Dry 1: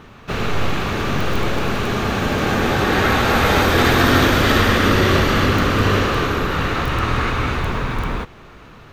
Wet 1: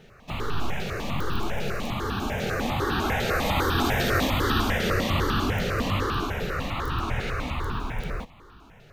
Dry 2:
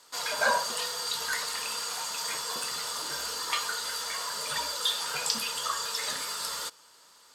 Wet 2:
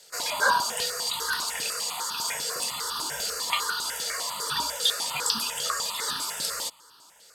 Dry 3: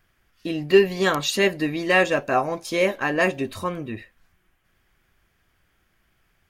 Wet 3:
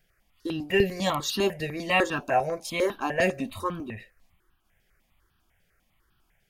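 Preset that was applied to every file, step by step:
stepped phaser 10 Hz 290–2100 Hz; normalise loudness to -27 LUFS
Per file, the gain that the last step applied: -6.0 dB, +5.5 dB, -0.5 dB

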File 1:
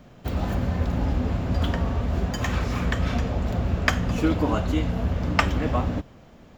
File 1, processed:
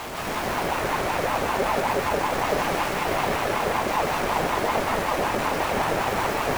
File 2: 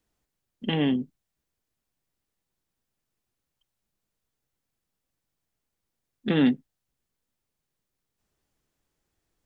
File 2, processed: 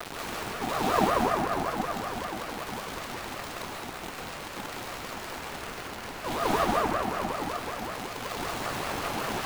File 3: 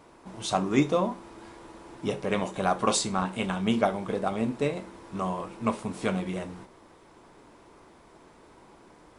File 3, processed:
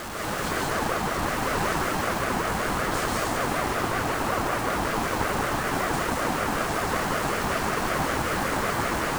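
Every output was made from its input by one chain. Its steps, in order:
spectral levelling over time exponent 0.4; reverse; compression 10:1, threshold -26 dBFS; reverse; companded quantiser 2-bit; plate-style reverb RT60 4.8 s, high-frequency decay 0.3×, pre-delay 115 ms, DRR -8 dB; ring modulator with a swept carrier 720 Hz, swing 35%, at 5.3 Hz; peak normalisation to -9 dBFS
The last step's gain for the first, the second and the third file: -4.5 dB, -2.5 dB, -6.0 dB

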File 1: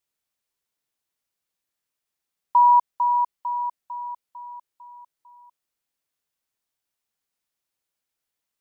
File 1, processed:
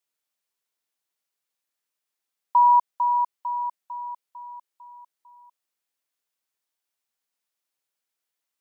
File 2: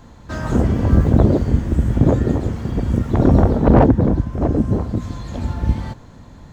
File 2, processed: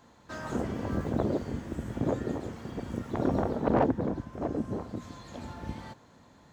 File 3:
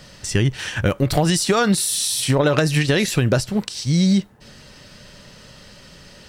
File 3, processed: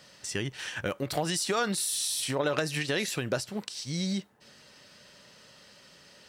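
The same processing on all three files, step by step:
high-pass 360 Hz 6 dB/octave; peak normalisation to -12 dBFS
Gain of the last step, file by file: -0.5 dB, -9.0 dB, -8.5 dB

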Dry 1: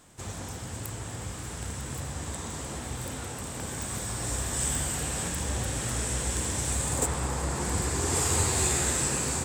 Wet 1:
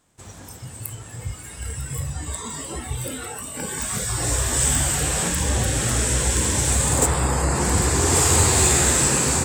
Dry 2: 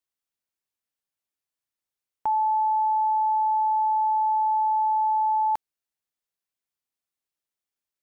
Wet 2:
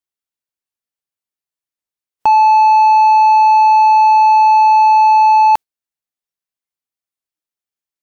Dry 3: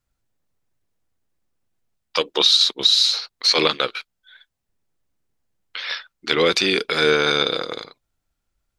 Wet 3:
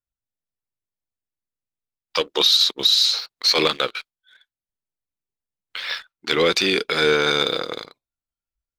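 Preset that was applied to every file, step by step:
waveshaping leveller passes 1; spectral noise reduction 13 dB; peak normalisation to -6 dBFS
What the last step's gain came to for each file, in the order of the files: +5.5 dB, +13.5 dB, -3.5 dB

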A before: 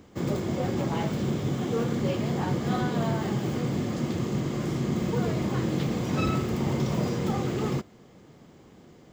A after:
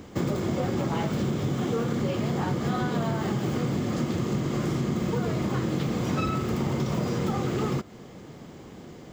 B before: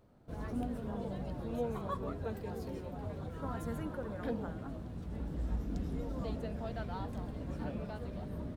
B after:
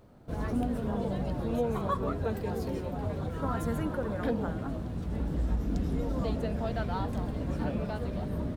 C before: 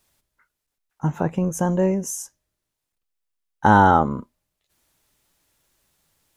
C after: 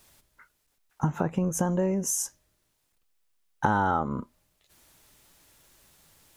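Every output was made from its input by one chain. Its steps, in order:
dynamic bell 1.3 kHz, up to +4 dB, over -49 dBFS, Q 4.1; compression 6:1, threshold -32 dBFS; trim +8 dB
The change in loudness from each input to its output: +0.5 LU, +7.5 LU, -7.5 LU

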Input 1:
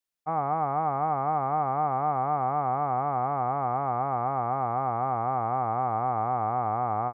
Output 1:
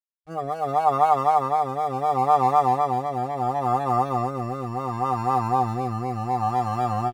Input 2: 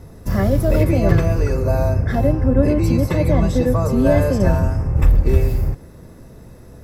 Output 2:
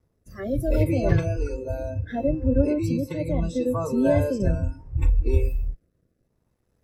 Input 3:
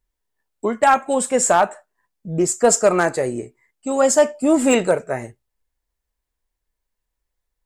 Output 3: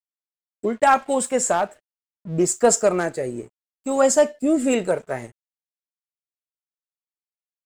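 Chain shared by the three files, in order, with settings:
crossover distortion -45 dBFS; spectral noise reduction 19 dB; rotary cabinet horn 0.7 Hz; peak normalisation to -6 dBFS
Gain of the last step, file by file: +12.0 dB, -4.0 dB, -0.5 dB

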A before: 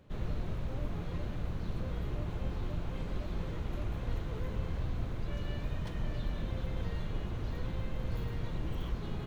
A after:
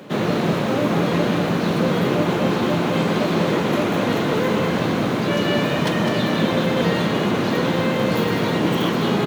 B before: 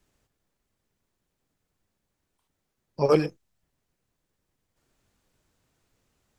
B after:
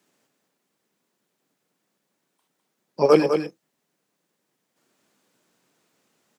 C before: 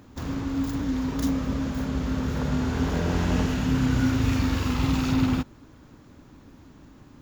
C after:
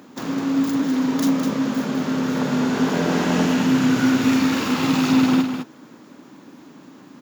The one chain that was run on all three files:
high-pass 180 Hz 24 dB/octave; on a send: delay 205 ms -7 dB; on the sum: normalise loudness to -20 LUFS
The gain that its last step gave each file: +24.0 dB, +5.0 dB, +7.0 dB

